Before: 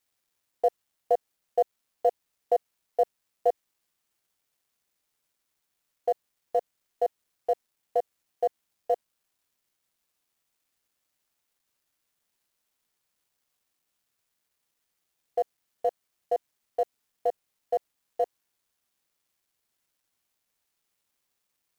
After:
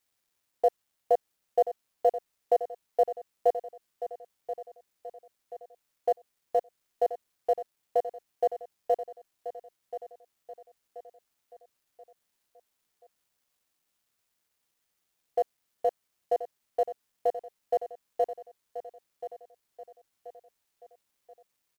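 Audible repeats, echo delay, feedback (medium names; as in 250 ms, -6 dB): 4, 1031 ms, 43%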